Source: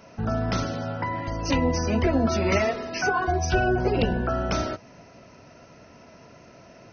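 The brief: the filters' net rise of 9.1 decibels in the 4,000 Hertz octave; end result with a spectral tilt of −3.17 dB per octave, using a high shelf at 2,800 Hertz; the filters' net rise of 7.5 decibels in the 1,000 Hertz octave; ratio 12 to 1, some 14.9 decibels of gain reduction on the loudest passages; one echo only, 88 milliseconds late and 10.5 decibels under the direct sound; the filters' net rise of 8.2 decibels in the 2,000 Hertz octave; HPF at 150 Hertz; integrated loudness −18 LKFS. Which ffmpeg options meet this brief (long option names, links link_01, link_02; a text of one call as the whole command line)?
ffmpeg -i in.wav -af "highpass=150,equalizer=frequency=1000:width_type=o:gain=8,equalizer=frequency=2000:width_type=o:gain=4,highshelf=frequency=2800:gain=8.5,equalizer=frequency=4000:width_type=o:gain=3,acompressor=threshold=-28dB:ratio=12,aecho=1:1:88:0.299,volume=13dB" out.wav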